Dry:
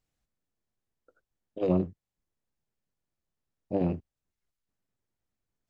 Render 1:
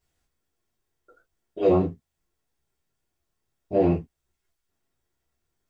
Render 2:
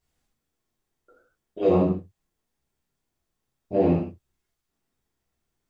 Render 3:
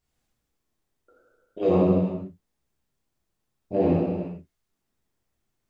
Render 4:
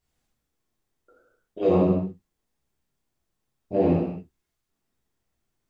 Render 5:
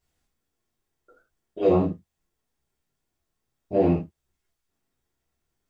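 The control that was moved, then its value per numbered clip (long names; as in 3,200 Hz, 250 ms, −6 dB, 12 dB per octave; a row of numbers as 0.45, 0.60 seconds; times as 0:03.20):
reverb whose tail is shaped and stops, gate: 80, 200, 490, 310, 120 milliseconds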